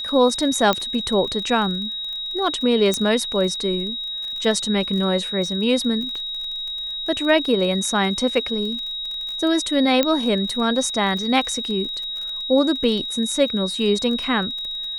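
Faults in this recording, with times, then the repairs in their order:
crackle 33/s -29 dBFS
tone 3800 Hz -26 dBFS
0.73 pop -5 dBFS
2.94 pop -8 dBFS
10.03 pop -4 dBFS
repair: de-click; notch 3800 Hz, Q 30

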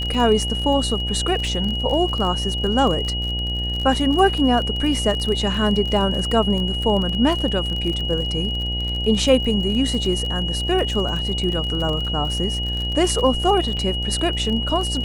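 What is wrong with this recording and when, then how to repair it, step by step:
buzz 60 Hz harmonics 15 -26 dBFS
crackle 35/s -25 dBFS
tone 2900 Hz -25 dBFS
13.77 gap 4.5 ms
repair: de-click; de-hum 60 Hz, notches 15; notch 2900 Hz, Q 30; interpolate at 13.77, 4.5 ms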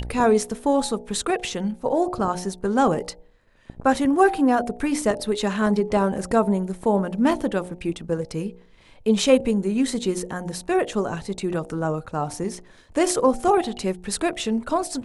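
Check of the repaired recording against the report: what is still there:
none

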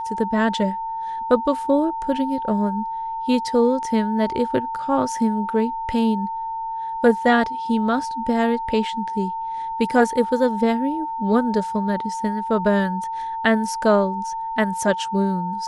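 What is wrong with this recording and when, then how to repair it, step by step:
tone 900 Hz -25 dBFS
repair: notch 900 Hz, Q 30

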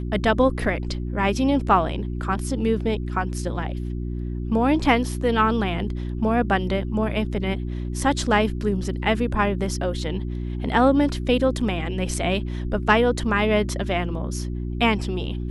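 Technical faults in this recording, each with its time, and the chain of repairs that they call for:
hum 60 Hz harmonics 6 -28 dBFS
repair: de-hum 60 Hz, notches 6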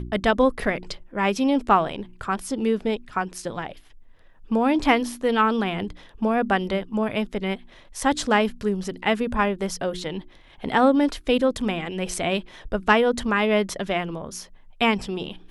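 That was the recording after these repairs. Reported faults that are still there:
none

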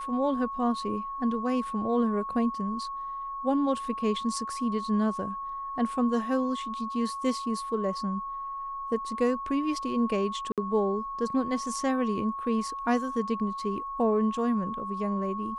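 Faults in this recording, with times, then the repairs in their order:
tone 1100 Hz -33 dBFS
10.52–10.58 gap 57 ms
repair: notch 1100 Hz, Q 30; interpolate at 10.52, 57 ms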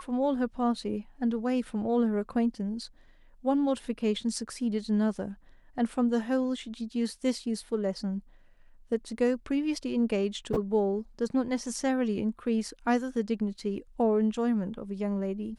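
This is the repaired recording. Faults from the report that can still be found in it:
none

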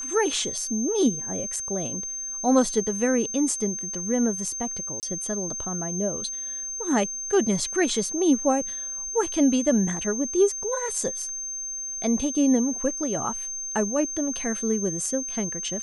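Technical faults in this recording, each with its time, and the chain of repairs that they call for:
tone 6300 Hz -30 dBFS
5–5.03 gap 28 ms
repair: notch 6300 Hz, Q 30; interpolate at 5, 28 ms

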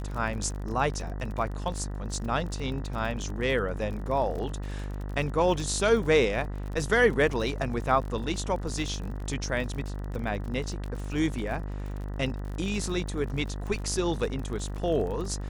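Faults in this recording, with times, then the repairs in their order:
buzz 50 Hz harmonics 39 -34 dBFS
crackle 39/s -35 dBFS
9.2 gap 2.7 ms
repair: de-click; de-hum 50 Hz, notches 39; interpolate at 9.2, 2.7 ms

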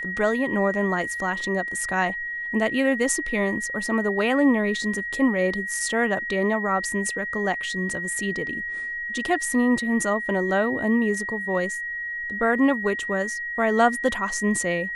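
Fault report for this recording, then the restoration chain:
tone 1900 Hz -28 dBFS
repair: notch 1900 Hz, Q 30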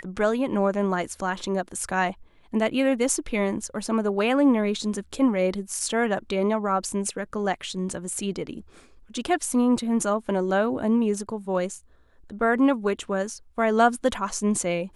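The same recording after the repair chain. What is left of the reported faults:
none

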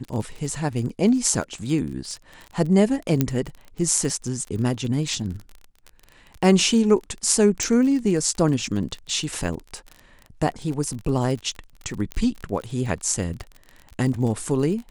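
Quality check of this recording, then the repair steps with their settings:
crackle 33/s -30 dBFS
3.21 pop -6 dBFS
7.63 pop
12.12 pop -14 dBFS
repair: de-click

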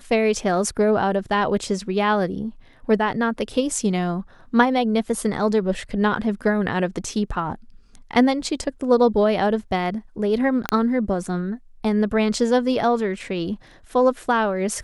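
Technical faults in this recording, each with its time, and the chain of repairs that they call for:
10.69 pop -5 dBFS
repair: de-click

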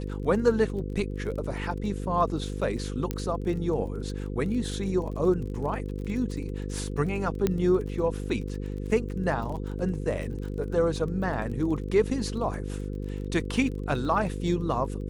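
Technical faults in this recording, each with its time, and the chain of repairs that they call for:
buzz 50 Hz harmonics 10 -33 dBFS
crackle 26/s -36 dBFS
3.11 pop -15 dBFS
7.47 pop -12 dBFS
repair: de-click; de-hum 50 Hz, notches 10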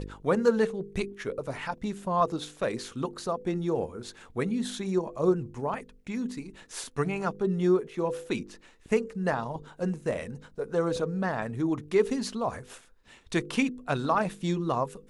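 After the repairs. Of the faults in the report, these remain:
3.11 pop

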